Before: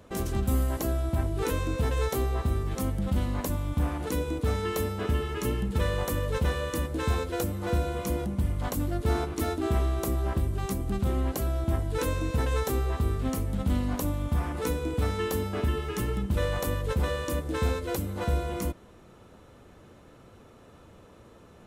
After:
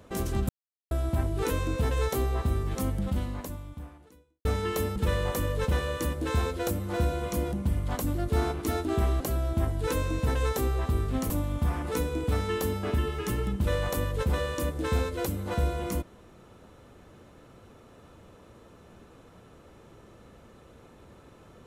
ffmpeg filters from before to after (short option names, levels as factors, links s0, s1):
-filter_complex "[0:a]asplit=7[s0][s1][s2][s3][s4][s5][s6];[s0]atrim=end=0.49,asetpts=PTS-STARTPTS,afade=t=out:st=0.486:d=0.004:c=hsin[s7];[s1]atrim=start=0.49:end=0.91,asetpts=PTS-STARTPTS,volume=0[s8];[s2]atrim=start=0.91:end=4.45,asetpts=PTS-STARTPTS,afade=t=in:d=0.004:c=hsin,afade=t=out:st=2.05:d=1.49:c=qua[s9];[s3]atrim=start=4.45:end=4.962,asetpts=PTS-STARTPTS,afade=t=in:d=0.004:c=hsin[s10];[s4]atrim=start=5.688:end=9.932[s11];[s5]atrim=start=11.308:end=13.412[s12];[s6]atrim=start=13.998[s13];[s7][s8][s9][s10]concat=n=4:v=0:a=1[s14];[s14][s11]acrossfade=d=0.004:c1=hsin:c2=hsin[s15];[s15][s12]acrossfade=d=0.004:c1=hsin:c2=hsin[s16];[s16][s13]acrossfade=d=0.004:c1=hsin:c2=hsin"